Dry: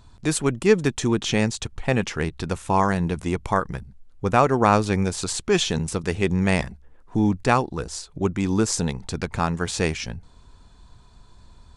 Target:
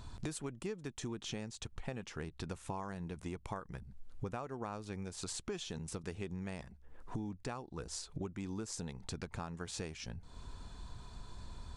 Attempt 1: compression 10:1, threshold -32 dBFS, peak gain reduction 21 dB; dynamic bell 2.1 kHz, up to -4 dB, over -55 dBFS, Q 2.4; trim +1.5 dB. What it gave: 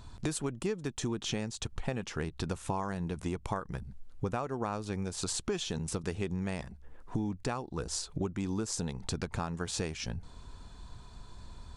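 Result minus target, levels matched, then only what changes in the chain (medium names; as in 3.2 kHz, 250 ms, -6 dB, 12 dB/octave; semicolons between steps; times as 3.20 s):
compression: peak gain reduction -7.5 dB
change: compression 10:1, threshold -40.5 dBFS, peak gain reduction 29 dB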